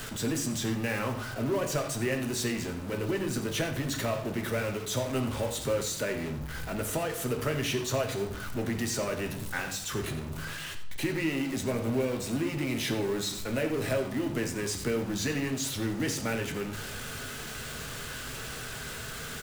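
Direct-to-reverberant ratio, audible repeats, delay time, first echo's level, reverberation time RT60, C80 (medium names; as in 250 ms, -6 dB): 3.5 dB, 1, 88 ms, -14.0 dB, 0.70 s, 11.0 dB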